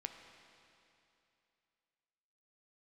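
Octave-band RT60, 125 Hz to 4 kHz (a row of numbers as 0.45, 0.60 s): 2.8, 2.8, 2.8, 2.8, 2.8, 2.7 s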